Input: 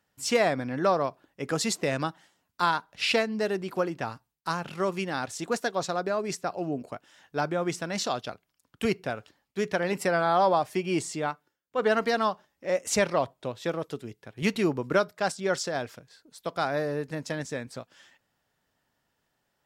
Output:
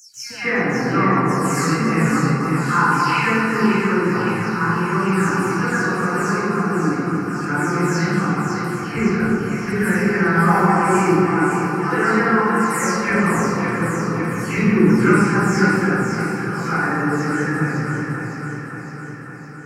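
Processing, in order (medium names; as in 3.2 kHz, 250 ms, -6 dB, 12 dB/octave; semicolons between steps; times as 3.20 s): delay that grows with frequency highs early, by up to 312 ms; static phaser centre 1.5 kHz, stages 4; echo whose repeats swap between lows and highs 279 ms, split 1.3 kHz, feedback 79%, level -4 dB; reverberation RT60 2.2 s, pre-delay 139 ms, DRR -19 dB; trim -8.5 dB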